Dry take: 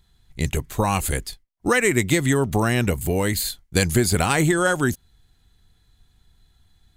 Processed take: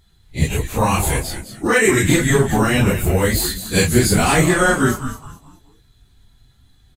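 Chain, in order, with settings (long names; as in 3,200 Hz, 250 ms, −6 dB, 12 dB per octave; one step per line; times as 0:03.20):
random phases in long frames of 100 ms
echo with shifted repeats 211 ms, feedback 32%, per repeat −140 Hz, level −10 dB
0:01.67–0:02.08: multiband upward and downward expander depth 70%
level +4.5 dB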